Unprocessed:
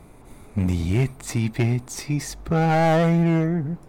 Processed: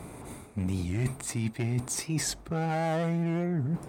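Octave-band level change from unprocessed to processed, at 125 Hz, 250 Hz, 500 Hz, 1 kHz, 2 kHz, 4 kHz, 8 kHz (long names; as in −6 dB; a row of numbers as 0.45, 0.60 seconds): −8.5, −8.5, −10.0, −10.0, −8.5, −3.0, +1.0 decibels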